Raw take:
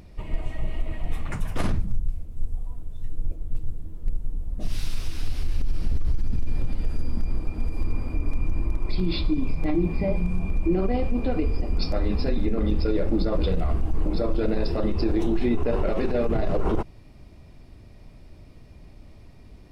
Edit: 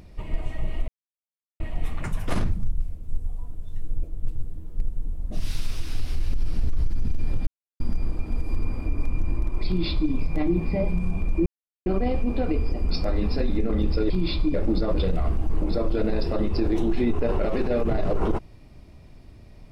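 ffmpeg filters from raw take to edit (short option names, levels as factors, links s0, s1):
-filter_complex "[0:a]asplit=7[s0][s1][s2][s3][s4][s5][s6];[s0]atrim=end=0.88,asetpts=PTS-STARTPTS,afade=t=out:st=0.876:d=0.004:c=hsin,apad=pad_dur=0.72[s7];[s1]atrim=start=0.88:end=6.75,asetpts=PTS-STARTPTS,afade=t=in:d=0.004:c=hsin,afade=t=out:st=5.866:d=0.004:c=hsin[s8];[s2]atrim=start=6.75:end=7.08,asetpts=PTS-STARTPTS,volume=0[s9];[s3]atrim=start=7.08:end=10.74,asetpts=PTS-STARTPTS,afade=t=in:d=0.004:c=hsin,afade=t=out:st=3.656:d=0.004:c=hsin,apad=pad_dur=0.4[s10];[s4]atrim=start=10.74:end=12.982,asetpts=PTS-STARTPTS,afade=t=in:d=0.004:c=hsin[s11];[s5]atrim=start=8.948:end=9.392[s12];[s6]atrim=start=12.978[s13];[s7][s8][s9][s10][s11]concat=n=5:v=0:a=1[s14];[s14][s12]acrossfade=d=0.004:c1=hsin:c2=hsin[s15];[s15][s13]acrossfade=d=0.004:c1=hsin:c2=hsin"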